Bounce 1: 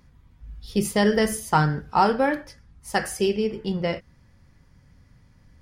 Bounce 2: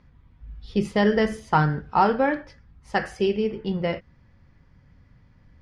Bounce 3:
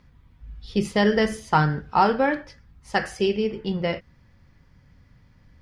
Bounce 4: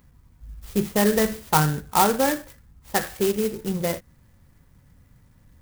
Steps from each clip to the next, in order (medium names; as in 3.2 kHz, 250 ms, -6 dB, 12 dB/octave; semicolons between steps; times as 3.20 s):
low-pass 3.5 kHz 12 dB/octave
treble shelf 3.5 kHz +8 dB
sampling jitter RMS 0.08 ms